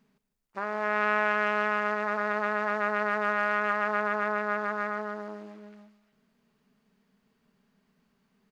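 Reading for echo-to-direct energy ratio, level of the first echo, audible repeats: -14.5 dB, -15.0 dB, 2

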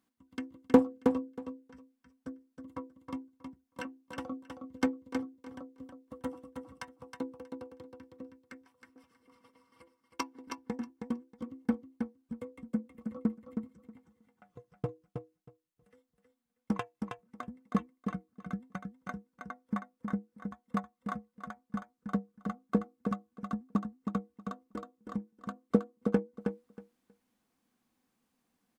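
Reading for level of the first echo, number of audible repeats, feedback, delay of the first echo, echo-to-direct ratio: -6.0 dB, 2, 16%, 318 ms, -6.0 dB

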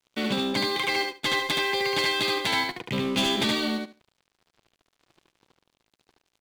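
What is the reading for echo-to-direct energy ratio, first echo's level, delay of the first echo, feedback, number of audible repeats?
-3.0 dB, -3.0 dB, 73 ms, 16%, 3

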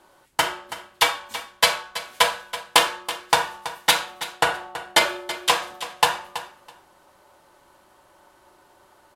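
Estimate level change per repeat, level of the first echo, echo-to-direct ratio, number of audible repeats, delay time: -16.0 dB, -13.5 dB, -13.5 dB, 2, 328 ms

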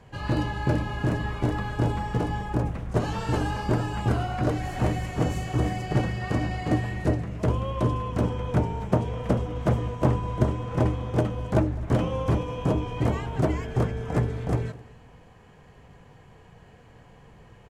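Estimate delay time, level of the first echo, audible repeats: 205 ms, -22.0 dB, 2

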